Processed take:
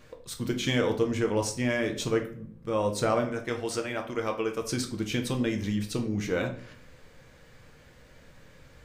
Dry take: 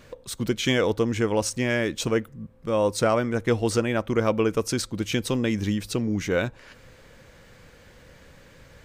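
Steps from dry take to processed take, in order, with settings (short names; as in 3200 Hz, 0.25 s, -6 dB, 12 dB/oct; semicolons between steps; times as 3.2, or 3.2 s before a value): 3.25–4.62 low shelf 430 Hz -9.5 dB; reverb RT60 0.55 s, pre-delay 7 ms, DRR 3.5 dB; gain -5.5 dB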